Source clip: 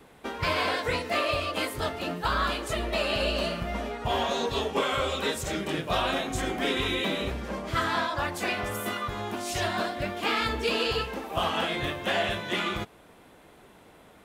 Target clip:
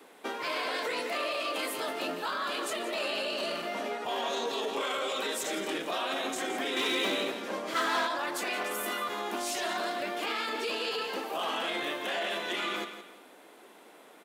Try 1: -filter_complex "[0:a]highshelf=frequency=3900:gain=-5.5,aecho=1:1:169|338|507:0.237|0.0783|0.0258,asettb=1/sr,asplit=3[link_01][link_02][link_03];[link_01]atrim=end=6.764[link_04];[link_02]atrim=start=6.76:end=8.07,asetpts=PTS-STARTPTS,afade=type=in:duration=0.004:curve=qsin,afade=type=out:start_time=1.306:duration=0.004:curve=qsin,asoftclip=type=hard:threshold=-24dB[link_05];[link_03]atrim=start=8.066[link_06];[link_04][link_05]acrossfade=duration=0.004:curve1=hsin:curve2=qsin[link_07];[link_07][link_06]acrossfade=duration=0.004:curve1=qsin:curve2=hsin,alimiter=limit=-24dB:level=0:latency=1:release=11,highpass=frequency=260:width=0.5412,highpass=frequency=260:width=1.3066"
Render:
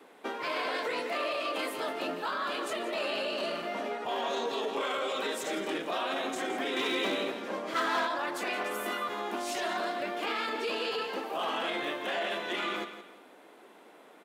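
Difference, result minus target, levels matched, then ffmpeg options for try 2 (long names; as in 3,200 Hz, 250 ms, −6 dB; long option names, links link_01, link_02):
8,000 Hz band −5.0 dB
-filter_complex "[0:a]highshelf=frequency=3900:gain=2.5,aecho=1:1:169|338|507:0.237|0.0783|0.0258,asettb=1/sr,asplit=3[link_01][link_02][link_03];[link_01]atrim=end=6.764[link_04];[link_02]atrim=start=6.76:end=8.07,asetpts=PTS-STARTPTS,afade=type=in:duration=0.004:curve=qsin,afade=type=out:start_time=1.306:duration=0.004:curve=qsin,asoftclip=type=hard:threshold=-24dB[link_05];[link_03]atrim=start=8.066[link_06];[link_04][link_05]acrossfade=duration=0.004:curve1=hsin:curve2=qsin[link_07];[link_07][link_06]acrossfade=duration=0.004:curve1=qsin:curve2=hsin,alimiter=limit=-24dB:level=0:latency=1:release=11,highpass=frequency=260:width=0.5412,highpass=frequency=260:width=1.3066"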